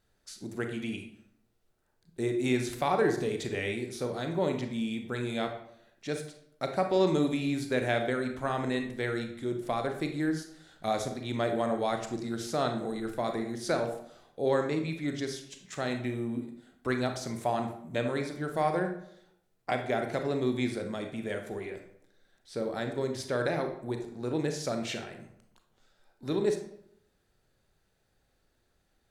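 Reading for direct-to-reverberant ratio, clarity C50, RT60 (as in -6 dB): 5.0 dB, 7.5 dB, 0.75 s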